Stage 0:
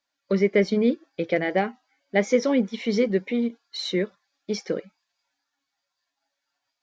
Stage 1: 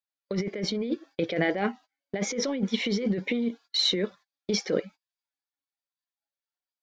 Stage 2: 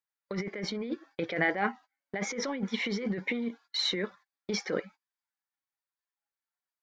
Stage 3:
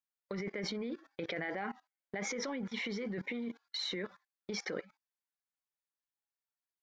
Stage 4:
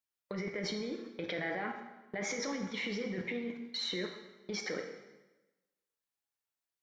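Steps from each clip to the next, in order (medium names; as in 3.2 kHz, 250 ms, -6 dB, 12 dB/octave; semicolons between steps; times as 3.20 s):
gate -47 dBFS, range -25 dB; peaking EQ 3.5 kHz +3.5 dB 0.58 oct; compressor with a negative ratio -27 dBFS, ratio -1
high-order bell 1.3 kHz +8 dB; trim -5.5 dB
level held to a coarse grid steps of 21 dB; trim +4 dB
plate-style reverb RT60 1.1 s, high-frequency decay 0.9×, DRR 3.5 dB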